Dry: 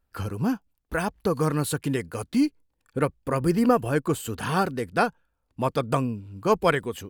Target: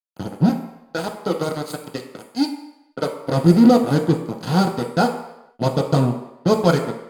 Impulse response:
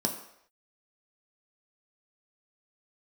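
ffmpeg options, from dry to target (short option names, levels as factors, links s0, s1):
-filter_complex "[0:a]asettb=1/sr,asplit=3[s0][s1][s2];[s0]atrim=end=0.494[s3];[s1]atrim=start=0.49:end=3.17,asetpts=PTS-STARTPTS,afade=t=in:d=0.004:c=qsin,afade=t=out:st=2.676:d=0.004:c=qsin,highpass=380[s4];[s2]atrim=start=3.166[s5];[s3][s4]acrossfade=d=0.004:c1=hsin:c2=qsin[s6];[s6][s5]acrossfade=d=0.004:c1=qsin:c2=hsin,acrusher=bits=3:mix=0:aa=0.5[s7];[1:a]atrim=start_sample=2205,asetrate=36603,aresample=44100[s8];[s7][s8]afir=irnorm=-1:irlink=0,volume=0.473"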